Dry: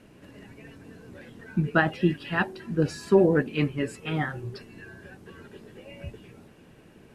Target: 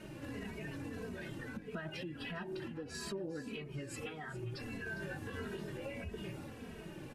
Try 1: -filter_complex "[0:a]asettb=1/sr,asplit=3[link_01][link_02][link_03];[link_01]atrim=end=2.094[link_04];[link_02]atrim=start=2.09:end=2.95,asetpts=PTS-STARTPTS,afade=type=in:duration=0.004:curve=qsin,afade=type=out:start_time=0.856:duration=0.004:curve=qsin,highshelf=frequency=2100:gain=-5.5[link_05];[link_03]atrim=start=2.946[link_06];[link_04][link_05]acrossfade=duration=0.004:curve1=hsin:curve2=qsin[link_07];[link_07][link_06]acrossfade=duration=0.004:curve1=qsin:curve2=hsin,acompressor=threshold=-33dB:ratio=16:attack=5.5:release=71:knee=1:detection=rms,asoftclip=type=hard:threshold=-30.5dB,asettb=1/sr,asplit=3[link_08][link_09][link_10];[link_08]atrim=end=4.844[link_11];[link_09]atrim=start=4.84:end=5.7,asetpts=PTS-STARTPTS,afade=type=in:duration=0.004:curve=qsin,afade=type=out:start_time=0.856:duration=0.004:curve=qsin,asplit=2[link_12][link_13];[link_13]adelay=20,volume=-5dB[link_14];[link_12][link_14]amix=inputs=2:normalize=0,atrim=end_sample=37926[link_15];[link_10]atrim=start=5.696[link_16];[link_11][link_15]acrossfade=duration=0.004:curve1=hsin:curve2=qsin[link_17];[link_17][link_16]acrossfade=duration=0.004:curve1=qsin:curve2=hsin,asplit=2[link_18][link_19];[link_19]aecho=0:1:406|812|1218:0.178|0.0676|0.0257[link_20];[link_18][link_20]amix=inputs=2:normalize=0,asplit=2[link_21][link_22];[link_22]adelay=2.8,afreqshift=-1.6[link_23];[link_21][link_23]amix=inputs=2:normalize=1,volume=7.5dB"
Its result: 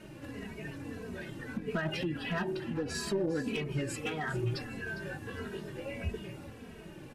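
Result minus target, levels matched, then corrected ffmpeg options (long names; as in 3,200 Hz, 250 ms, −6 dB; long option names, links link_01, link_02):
downward compressor: peak gain reduction −10.5 dB
-filter_complex "[0:a]asettb=1/sr,asplit=3[link_01][link_02][link_03];[link_01]atrim=end=2.094[link_04];[link_02]atrim=start=2.09:end=2.95,asetpts=PTS-STARTPTS,afade=type=in:duration=0.004:curve=qsin,afade=type=out:start_time=0.856:duration=0.004:curve=qsin,highshelf=frequency=2100:gain=-5.5[link_05];[link_03]atrim=start=2.946[link_06];[link_04][link_05]acrossfade=duration=0.004:curve1=hsin:curve2=qsin[link_07];[link_07][link_06]acrossfade=duration=0.004:curve1=qsin:curve2=hsin,acompressor=threshold=-44dB:ratio=16:attack=5.5:release=71:knee=1:detection=rms,asoftclip=type=hard:threshold=-30.5dB,asettb=1/sr,asplit=3[link_08][link_09][link_10];[link_08]atrim=end=4.844[link_11];[link_09]atrim=start=4.84:end=5.7,asetpts=PTS-STARTPTS,afade=type=in:duration=0.004:curve=qsin,afade=type=out:start_time=0.856:duration=0.004:curve=qsin,asplit=2[link_12][link_13];[link_13]adelay=20,volume=-5dB[link_14];[link_12][link_14]amix=inputs=2:normalize=0,atrim=end_sample=37926[link_15];[link_10]atrim=start=5.696[link_16];[link_11][link_15]acrossfade=duration=0.004:curve1=hsin:curve2=qsin[link_17];[link_17][link_16]acrossfade=duration=0.004:curve1=qsin:curve2=hsin,asplit=2[link_18][link_19];[link_19]aecho=0:1:406|812|1218:0.178|0.0676|0.0257[link_20];[link_18][link_20]amix=inputs=2:normalize=0,asplit=2[link_21][link_22];[link_22]adelay=2.8,afreqshift=-1.6[link_23];[link_21][link_23]amix=inputs=2:normalize=1,volume=7.5dB"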